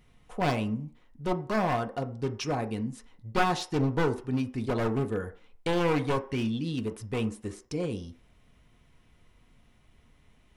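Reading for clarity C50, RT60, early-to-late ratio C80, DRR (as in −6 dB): 15.0 dB, 0.45 s, 20.0 dB, 4.5 dB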